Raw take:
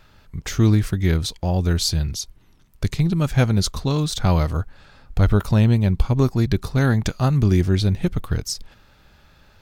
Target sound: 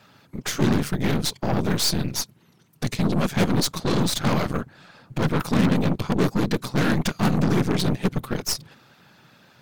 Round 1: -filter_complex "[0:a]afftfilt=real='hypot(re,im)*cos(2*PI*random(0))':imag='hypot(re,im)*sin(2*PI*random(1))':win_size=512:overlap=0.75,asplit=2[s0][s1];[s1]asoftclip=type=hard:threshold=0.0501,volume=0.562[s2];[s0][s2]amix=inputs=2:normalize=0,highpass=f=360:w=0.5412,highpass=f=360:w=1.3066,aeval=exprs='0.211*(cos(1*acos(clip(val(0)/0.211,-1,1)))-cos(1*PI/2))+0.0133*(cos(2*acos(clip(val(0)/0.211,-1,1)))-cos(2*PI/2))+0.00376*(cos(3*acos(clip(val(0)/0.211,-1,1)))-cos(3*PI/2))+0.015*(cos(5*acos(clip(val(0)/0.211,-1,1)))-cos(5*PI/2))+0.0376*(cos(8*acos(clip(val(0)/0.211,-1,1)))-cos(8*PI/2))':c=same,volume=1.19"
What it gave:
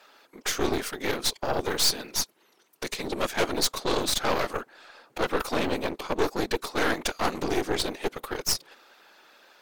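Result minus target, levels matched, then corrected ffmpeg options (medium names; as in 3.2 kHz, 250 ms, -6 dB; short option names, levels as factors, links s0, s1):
125 Hz band -13.0 dB
-filter_complex "[0:a]afftfilt=real='hypot(re,im)*cos(2*PI*random(0))':imag='hypot(re,im)*sin(2*PI*random(1))':win_size=512:overlap=0.75,asplit=2[s0][s1];[s1]asoftclip=type=hard:threshold=0.0501,volume=0.562[s2];[s0][s2]amix=inputs=2:normalize=0,highpass=f=130:w=0.5412,highpass=f=130:w=1.3066,aeval=exprs='0.211*(cos(1*acos(clip(val(0)/0.211,-1,1)))-cos(1*PI/2))+0.0133*(cos(2*acos(clip(val(0)/0.211,-1,1)))-cos(2*PI/2))+0.00376*(cos(3*acos(clip(val(0)/0.211,-1,1)))-cos(3*PI/2))+0.015*(cos(5*acos(clip(val(0)/0.211,-1,1)))-cos(5*PI/2))+0.0376*(cos(8*acos(clip(val(0)/0.211,-1,1)))-cos(8*PI/2))':c=same,volume=1.19"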